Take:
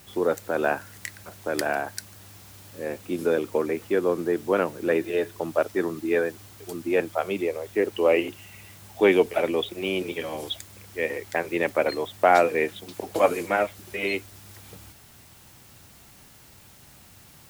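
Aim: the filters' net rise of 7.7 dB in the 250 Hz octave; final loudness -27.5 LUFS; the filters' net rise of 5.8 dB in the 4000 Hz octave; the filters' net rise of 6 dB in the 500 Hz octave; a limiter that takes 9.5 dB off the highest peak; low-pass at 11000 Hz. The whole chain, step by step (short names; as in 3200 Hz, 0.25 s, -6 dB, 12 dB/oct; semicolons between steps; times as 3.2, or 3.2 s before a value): LPF 11000 Hz; bell 250 Hz +9 dB; bell 500 Hz +4.5 dB; bell 4000 Hz +7.5 dB; gain -4.5 dB; limiter -14.5 dBFS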